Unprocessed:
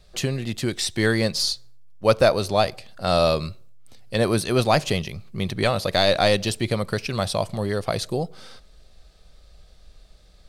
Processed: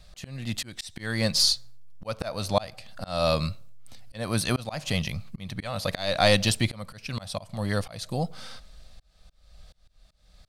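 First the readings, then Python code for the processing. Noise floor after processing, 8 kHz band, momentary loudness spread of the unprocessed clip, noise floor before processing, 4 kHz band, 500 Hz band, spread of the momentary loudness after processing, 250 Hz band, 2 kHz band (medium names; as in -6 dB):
-62 dBFS, -1.0 dB, 10 LU, -53 dBFS, -2.0 dB, -8.5 dB, 18 LU, -5.5 dB, -4.5 dB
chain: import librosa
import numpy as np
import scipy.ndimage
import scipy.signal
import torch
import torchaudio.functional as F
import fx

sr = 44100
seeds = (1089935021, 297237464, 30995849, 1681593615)

y = fx.peak_eq(x, sr, hz=390.0, db=-13.5, octaves=0.48)
y = fx.auto_swell(y, sr, attack_ms=395.0)
y = y * librosa.db_to_amplitude(2.5)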